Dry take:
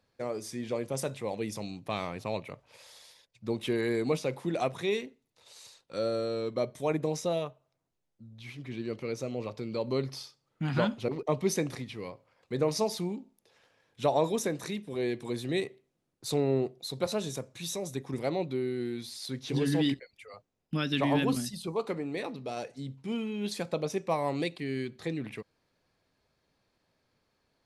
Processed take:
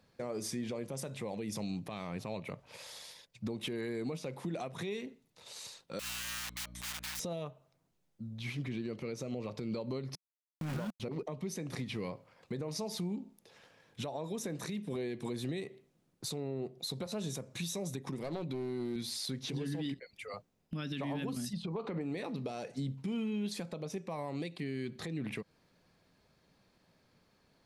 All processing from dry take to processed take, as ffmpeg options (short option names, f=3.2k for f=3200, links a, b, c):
-filter_complex "[0:a]asettb=1/sr,asplit=3[a][b][c];[a]atrim=end=5.994[d];[b]atrim=start=5.99:end=7.2,asetpts=PTS-STARTPTS,afade=t=in:d=0.004:c=qsin,afade=t=out:st=1.206:d=0.004:c=qsin,aeval=exprs='(mod(47.3*val(0)+1,2)-1)/47.3':c=same,highpass=1.4k,aeval=exprs='val(0)+0.00224*(sin(2*PI*60*n/s)+sin(2*PI*2*60*n/s)/2+sin(2*PI*3*60*n/s)/3+sin(2*PI*4*60*n/s)/4+sin(2*PI*5*60*n/s)/5)':c=same[e];[c]atrim=start=7.196[f];[d][e]acrossfade=d=0.004:c1=hsin:c2=qsin[g];[g][f]acrossfade=d=0.004:c1=qsin:c2=hsin,asettb=1/sr,asplit=3[h][i][j];[h]atrim=end=10.154[k];[i]atrim=start=10.15:end=11,asetpts=PTS-STARTPTS,afade=t=in:d=0.004:c=qsin,afade=t=out:st=0.846:d=0.004:c=qsin,lowpass=2.8k,aeval=exprs='val(0)*gte(abs(val(0)),0.0251)':c=same[l];[j]atrim=start=10.996[m];[k][l]acrossfade=d=0.004:c1=hsin:c2=qsin[n];[n][m]acrossfade=d=0.004:c1=qsin:c2=hsin,asettb=1/sr,asplit=3[o][p][q];[o]atrim=end=18.074[r];[p]atrim=start=18.07:end=18.96,asetpts=PTS-STARTPTS,afade=t=in:d=0.004:c=qsin,afade=t=out:st=0.886:d=0.004:c=qsin,highpass=110,acompressor=mode=upward:threshold=-34dB:ratio=2.5:attack=3.2:release=140:knee=2.83:detection=peak,aeval=exprs='clip(val(0),-1,0.0251)':c=same[s];[q]atrim=start=18.956[t];[r][s]acrossfade=d=0.004:c1=hsin:c2=qsin[u];[u][t]acrossfade=d=0.004:c1=qsin:c2=hsin,asettb=1/sr,asplit=3[v][w][x];[v]atrim=end=21.534[y];[w]atrim=start=21.53:end=22.01,asetpts=PTS-STARTPTS,afade=t=in:d=0.004:c=qsin,afade=t=out:st=0.476:d=0.004:c=qsin,lowpass=3.3k,acompressor=threshold=-33dB:ratio=6:attack=3.2:release=140:knee=1:detection=peak[z];[x]atrim=start=22.006[aa];[y][z]acrossfade=d=0.004:c1=hsin:c2=qsin[ab];[ab][aa]acrossfade=d=0.004:c1=qsin:c2=hsin,equalizer=f=180:t=o:w=0.69:g=6.5,acompressor=threshold=-35dB:ratio=5,alimiter=level_in=9.5dB:limit=-24dB:level=0:latency=1:release=161,volume=-9.5dB,volume=4.5dB"